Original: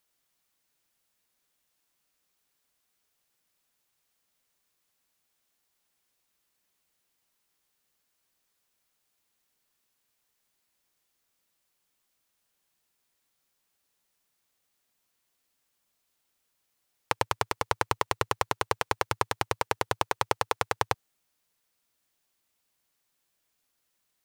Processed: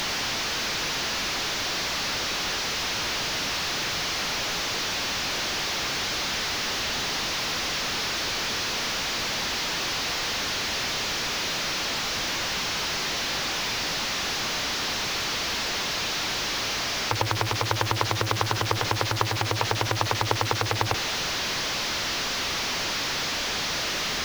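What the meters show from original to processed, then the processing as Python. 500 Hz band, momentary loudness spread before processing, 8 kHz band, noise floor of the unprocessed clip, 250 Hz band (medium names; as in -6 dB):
+6.0 dB, 2 LU, +17.5 dB, -78 dBFS, +12.5 dB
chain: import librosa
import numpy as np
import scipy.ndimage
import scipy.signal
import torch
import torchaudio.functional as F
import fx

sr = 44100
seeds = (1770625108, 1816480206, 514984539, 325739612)

p1 = fx.delta_mod(x, sr, bps=32000, step_db=-24.0)
p2 = fx.quant_dither(p1, sr, seeds[0], bits=6, dither='triangular')
y = p1 + (p2 * 10.0 ** (-8.0 / 20.0))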